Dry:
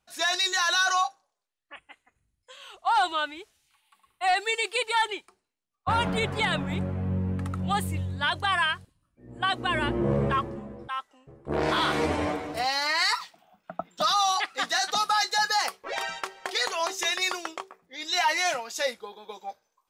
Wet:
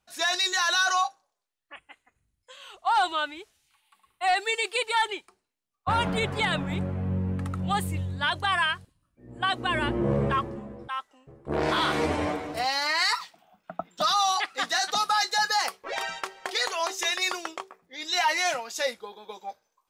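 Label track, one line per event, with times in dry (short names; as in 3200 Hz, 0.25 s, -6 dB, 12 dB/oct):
16.640000	17.260000	bell 160 Hz -12.5 dB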